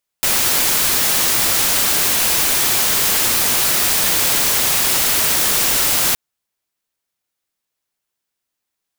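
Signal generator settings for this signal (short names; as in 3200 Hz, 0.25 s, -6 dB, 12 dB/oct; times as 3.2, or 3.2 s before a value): noise white, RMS -16 dBFS 5.92 s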